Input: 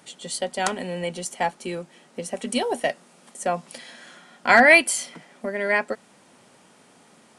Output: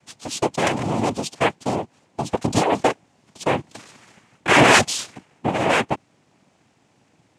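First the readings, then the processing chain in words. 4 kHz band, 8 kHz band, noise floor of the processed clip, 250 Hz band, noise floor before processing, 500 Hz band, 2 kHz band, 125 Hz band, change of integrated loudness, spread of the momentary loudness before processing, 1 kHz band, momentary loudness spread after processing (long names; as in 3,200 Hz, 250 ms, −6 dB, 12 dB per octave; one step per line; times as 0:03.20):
+6.5 dB, +2.5 dB, −62 dBFS, +6.5 dB, −55 dBFS, +2.5 dB, −1.5 dB, +13.0 dB, +1.5 dB, 21 LU, +4.0 dB, 16 LU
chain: leveller curve on the samples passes 2
low-shelf EQ 410 Hz +7.5 dB
cochlear-implant simulation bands 4
level −4.5 dB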